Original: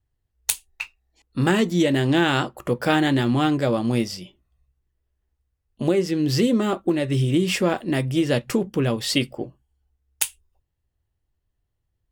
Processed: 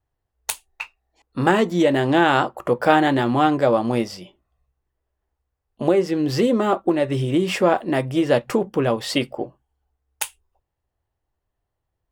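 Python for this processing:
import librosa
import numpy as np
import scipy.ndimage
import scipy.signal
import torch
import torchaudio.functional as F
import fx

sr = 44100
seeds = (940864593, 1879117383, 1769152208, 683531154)

y = fx.peak_eq(x, sr, hz=800.0, db=12.5, octaves=2.4)
y = y * librosa.db_to_amplitude(-4.5)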